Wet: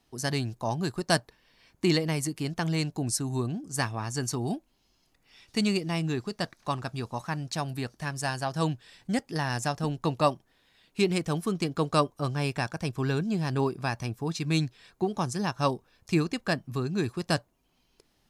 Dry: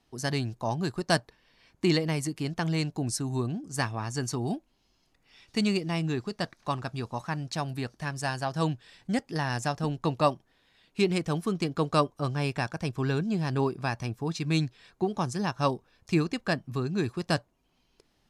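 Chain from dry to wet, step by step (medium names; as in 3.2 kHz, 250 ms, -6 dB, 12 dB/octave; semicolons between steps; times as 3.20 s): treble shelf 9.4 kHz +8.5 dB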